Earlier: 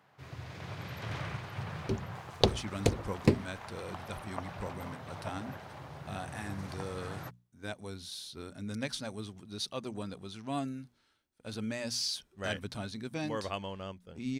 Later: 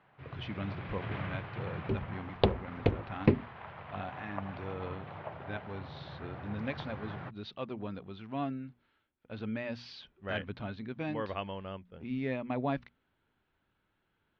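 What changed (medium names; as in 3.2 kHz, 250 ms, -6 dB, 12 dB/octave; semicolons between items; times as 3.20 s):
speech: entry -2.15 s; master: add inverse Chebyshev low-pass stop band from 9.1 kHz, stop band 60 dB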